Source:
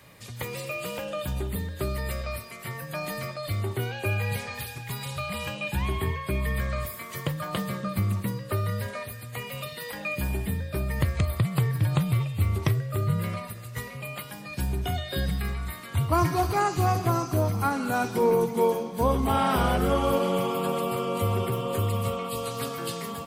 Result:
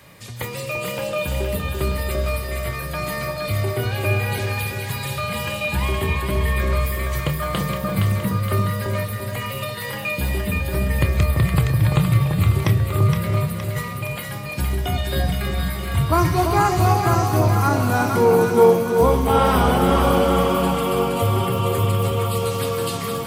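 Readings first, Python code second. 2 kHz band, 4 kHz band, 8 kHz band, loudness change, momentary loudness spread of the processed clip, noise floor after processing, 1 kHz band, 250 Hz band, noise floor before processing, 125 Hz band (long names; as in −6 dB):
+7.5 dB, +7.0 dB, +7.0 dB, +7.5 dB, 10 LU, −30 dBFS, +7.0 dB, +7.0 dB, −41 dBFS, +7.5 dB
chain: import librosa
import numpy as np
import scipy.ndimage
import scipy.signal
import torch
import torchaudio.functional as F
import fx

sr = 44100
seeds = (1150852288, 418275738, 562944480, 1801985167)

p1 = fx.doubler(x, sr, ms=28.0, db=-11.5)
p2 = p1 + fx.echo_split(p1, sr, split_hz=990.0, low_ms=339, high_ms=467, feedback_pct=52, wet_db=-4, dry=0)
y = p2 * 10.0 ** (5.0 / 20.0)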